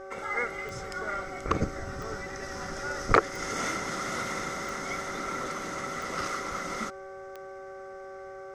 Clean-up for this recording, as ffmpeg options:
ffmpeg -i in.wav -af "adeclick=threshold=4,bandreject=frequency=384.4:width_type=h:width=4,bandreject=frequency=768.8:width_type=h:width=4,bandreject=frequency=1153.2:width_type=h:width=4,bandreject=frequency=1537.6:width_type=h:width=4,bandreject=frequency=560:width=30" out.wav

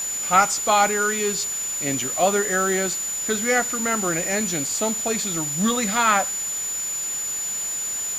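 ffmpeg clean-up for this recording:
ffmpeg -i in.wav -af "bandreject=frequency=7000:width=30,afwtdn=0.016" out.wav

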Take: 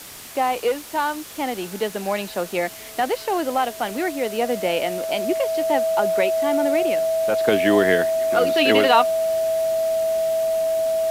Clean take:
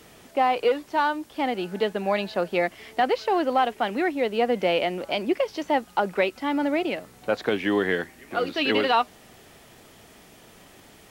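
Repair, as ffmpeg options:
ffmpeg -i in.wav -af "adeclick=threshold=4,bandreject=frequency=650:width=30,afwtdn=0.013,asetnsamples=nb_out_samples=441:pad=0,asendcmd='7.48 volume volume -5dB',volume=0dB" out.wav

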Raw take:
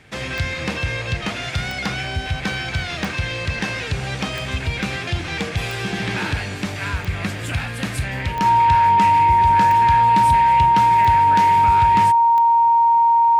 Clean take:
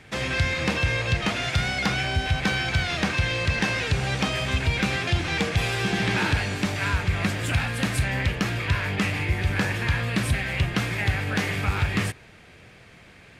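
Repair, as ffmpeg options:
ffmpeg -i in.wav -af "adeclick=threshold=4,bandreject=frequency=930:width=30" out.wav

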